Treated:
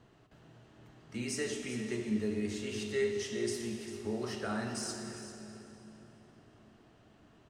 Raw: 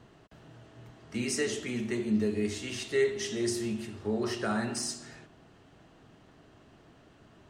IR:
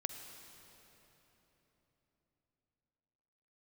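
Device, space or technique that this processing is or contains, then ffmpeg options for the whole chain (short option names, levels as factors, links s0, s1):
cave: -filter_complex "[0:a]aecho=1:1:395:0.237[s0];[1:a]atrim=start_sample=2205[s1];[s0][s1]afir=irnorm=-1:irlink=0,volume=0.596"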